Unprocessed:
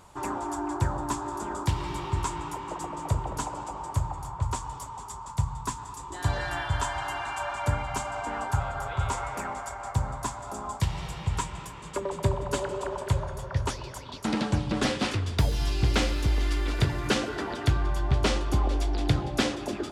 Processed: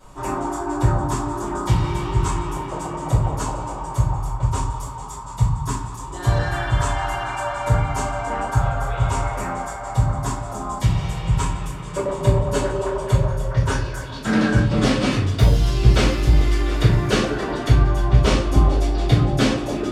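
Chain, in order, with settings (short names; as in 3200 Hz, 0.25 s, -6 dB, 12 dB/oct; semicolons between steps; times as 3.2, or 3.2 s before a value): 13.64–14.64 bell 1600 Hz +13 dB 0.23 oct; shoebox room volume 36 m³, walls mixed, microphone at 2.4 m; gain -6.5 dB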